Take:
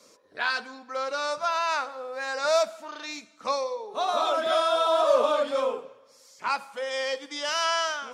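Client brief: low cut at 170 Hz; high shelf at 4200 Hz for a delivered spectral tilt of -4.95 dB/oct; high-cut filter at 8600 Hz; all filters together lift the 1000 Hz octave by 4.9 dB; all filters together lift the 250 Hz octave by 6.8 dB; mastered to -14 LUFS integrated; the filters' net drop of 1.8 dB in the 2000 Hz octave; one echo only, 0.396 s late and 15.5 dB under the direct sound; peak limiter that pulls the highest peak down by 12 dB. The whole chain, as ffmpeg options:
-af "highpass=170,lowpass=8.6k,equalizer=f=250:t=o:g=8.5,equalizer=f=1k:t=o:g=8,equalizer=f=2k:t=o:g=-8,highshelf=f=4.2k:g=6,alimiter=limit=-18.5dB:level=0:latency=1,aecho=1:1:396:0.168,volume=14.5dB"

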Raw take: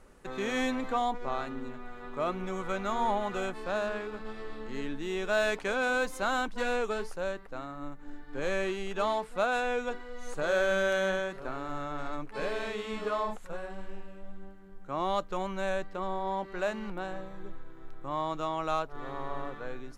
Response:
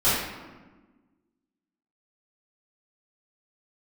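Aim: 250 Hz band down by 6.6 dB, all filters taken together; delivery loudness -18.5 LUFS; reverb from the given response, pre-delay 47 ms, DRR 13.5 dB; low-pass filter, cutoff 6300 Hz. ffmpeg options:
-filter_complex "[0:a]lowpass=6.3k,equalizer=f=250:t=o:g=-9,asplit=2[a][b];[1:a]atrim=start_sample=2205,adelay=47[c];[b][c]afir=irnorm=-1:irlink=0,volume=-30dB[d];[a][d]amix=inputs=2:normalize=0,volume=15.5dB"

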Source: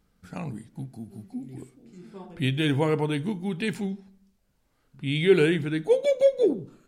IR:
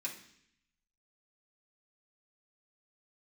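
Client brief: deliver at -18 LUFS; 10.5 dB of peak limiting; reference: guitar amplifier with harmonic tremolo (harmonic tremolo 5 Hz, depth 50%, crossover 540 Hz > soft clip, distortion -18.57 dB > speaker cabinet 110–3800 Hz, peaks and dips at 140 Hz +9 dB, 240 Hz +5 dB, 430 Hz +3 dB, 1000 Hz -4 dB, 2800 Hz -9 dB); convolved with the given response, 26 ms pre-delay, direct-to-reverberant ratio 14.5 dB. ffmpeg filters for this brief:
-filter_complex "[0:a]alimiter=limit=-18dB:level=0:latency=1,asplit=2[a][b];[1:a]atrim=start_sample=2205,adelay=26[c];[b][c]afir=irnorm=-1:irlink=0,volume=-15dB[d];[a][d]amix=inputs=2:normalize=0,acrossover=split=540[e][f];[e]aeval=exprs='val(0)*(1-0.5/2+0.5/2*cos(2*PI*5*n/s))':c=same[g];[f]aeval=exprs='val(0)*(1-0.5/2-0.5/2*cos(2*PI*5*n/s))':c=same[h];[g][h]amix=inputs=2:normalize=0,asoftclip=threshold=-22.5dB,highpass=110,equalizer=f=140:t=q:w=4:g=9,equalizer=f=240:t=q:w=4:g=5,equalizer=f=430:t=q:w=4:g=3,equalizer=f=1k:t=q:w=4:g=-4,equalizer=f=2.8k:t=q:w=4:g=-9,lowpass=f=3.8k:w=0.5412,lowpass=f=3.8k:w=1.3066,volume=13dB"

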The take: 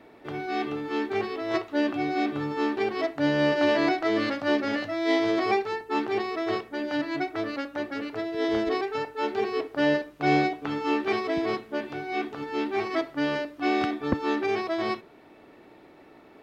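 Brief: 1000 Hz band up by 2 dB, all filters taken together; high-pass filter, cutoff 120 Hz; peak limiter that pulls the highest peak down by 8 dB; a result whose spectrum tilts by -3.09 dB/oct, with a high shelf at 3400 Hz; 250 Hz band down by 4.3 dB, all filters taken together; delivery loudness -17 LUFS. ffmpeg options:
-af "highpass=120,equalizer=f=250:t=o:g=-6,equalizer=f=1k:t=o:g=4,highshelf=f=3.4k:g=-8,volume=13.5dB,alimiter=limit=-6dB:level=0:latency=1"

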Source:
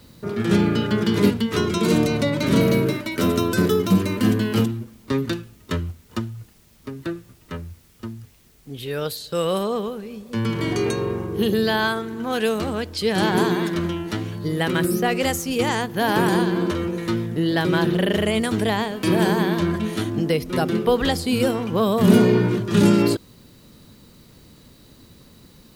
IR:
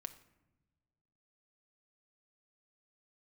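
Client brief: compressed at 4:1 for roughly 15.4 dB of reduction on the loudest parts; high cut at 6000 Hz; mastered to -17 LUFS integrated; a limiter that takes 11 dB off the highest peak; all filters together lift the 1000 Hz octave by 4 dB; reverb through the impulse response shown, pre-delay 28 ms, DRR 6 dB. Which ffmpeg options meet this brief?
-filter_complex "[0:a]lowpass=6k,equalizer=f=1k:t=o:g=5,acompressor=threshold=-28dB:ratio=4,alimiter=level_in=2dB:limit=-24dB:level=0:latency=1,volume=-2dB,asplit=2[a][b];[1:a]atrim=start_sample=2205,adelay=28[c];[b][c]afir=irnorm=-1:irlink=0,volume=-2dB[d];[a][d]amix=inputs=2:normalize=0,volume=17dB"

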